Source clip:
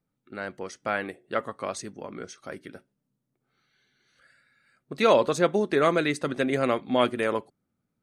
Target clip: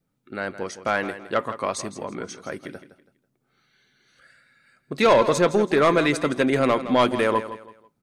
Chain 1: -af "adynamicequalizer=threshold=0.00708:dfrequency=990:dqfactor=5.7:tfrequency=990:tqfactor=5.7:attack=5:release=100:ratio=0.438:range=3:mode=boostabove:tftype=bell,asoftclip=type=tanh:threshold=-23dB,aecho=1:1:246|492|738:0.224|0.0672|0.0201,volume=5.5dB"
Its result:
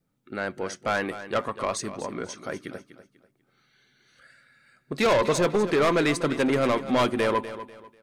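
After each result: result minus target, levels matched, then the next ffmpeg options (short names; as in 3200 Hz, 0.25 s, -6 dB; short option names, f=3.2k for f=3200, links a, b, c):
echo 82 ms late; soft clip: distortion +6 dB
-af "adynamicequalizer=threshold=0.00708:dfrequency=990:dqfactor=5.7:tfrequency=990:tqfactor=5.7:attack=5:release=100:ratio=0.438:range=3:mode=boostabove:tftype=bell,asoftclip=type=tanh:threshold=-23dB,aecho=1:1:164|328|492:0.224|0.0672|0.0201,volume=5.5dB"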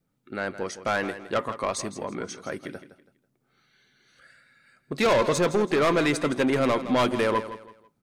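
soft clip: distortion +6 dB
-af "adynamicequalizer=threshold=0.00708:dfrequency=990:dqfactor=5.7:tfrequency=990:tqfactor=5.7:attack=5:release=100:ratio=0.438:range=3:mode=boostabove:tftype=bell,asoftclip=type=tanh:threshold=-15.5dB,aecho=1:1:164|328|492:0.224|0.0672|0.0201,volume=5.5dB"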